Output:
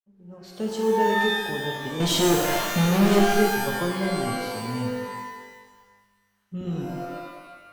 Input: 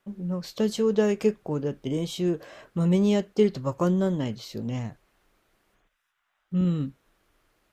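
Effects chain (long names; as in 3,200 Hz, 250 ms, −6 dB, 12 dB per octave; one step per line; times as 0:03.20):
fade in at the beginning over 0.77 s
0:02.00–0:03.19: leveller curve on the samples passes 5
reverb with rising layers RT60 1.2 s, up +12 semitones, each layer −2 dB, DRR 0.5 dB
level −5 dB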